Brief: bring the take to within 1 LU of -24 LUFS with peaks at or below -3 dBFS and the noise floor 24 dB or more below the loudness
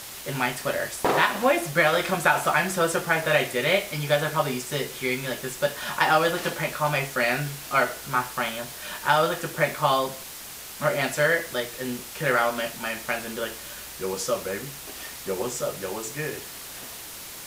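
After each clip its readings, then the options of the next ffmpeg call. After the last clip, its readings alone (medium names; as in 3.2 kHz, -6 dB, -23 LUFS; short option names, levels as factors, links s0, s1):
noise floor -40 dBFS; noise floor target -49 dBFS; loudness -25.0 LUFS; peak level -5.0 dBFS; loudness target -24.0 LUFS
-> -af "afftdn=nr=9:nf=-40"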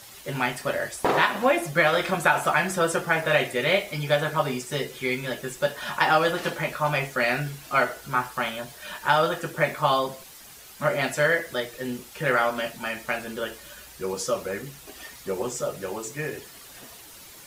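noise floor -46 dBFS; noise floor target -50 dBFS
-> -af "afftdn=nr=6:nf=-46"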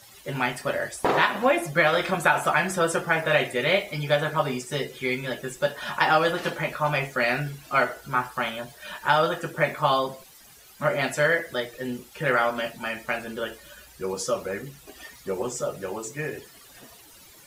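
noise floor -51 dBFS; loudness -25.5 LUFS; peak level -5.0 dBFS; loudness target -24.0 LUFS
-> -af "volume=1.19"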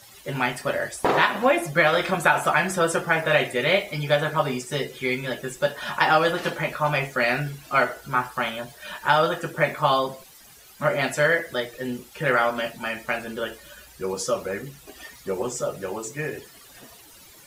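loudness -24.0 LUFS; peak level -3.5 dBFS; noise floor -49 dBFS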